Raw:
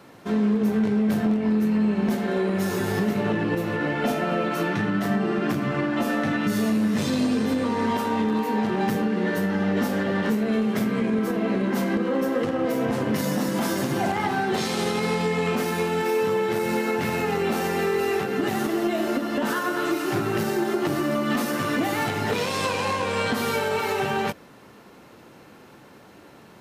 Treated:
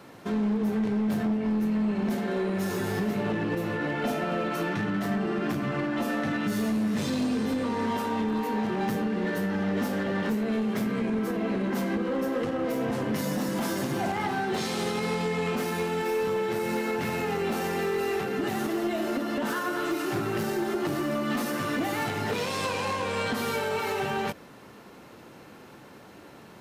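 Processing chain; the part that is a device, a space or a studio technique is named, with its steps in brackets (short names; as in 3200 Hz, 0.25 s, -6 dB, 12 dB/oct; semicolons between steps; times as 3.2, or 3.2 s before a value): clipper into limiter (hard clip -18.5 dBFS, distortion -21 dB; limiter -22.5 dBFS, peak gain reduction 4 dB)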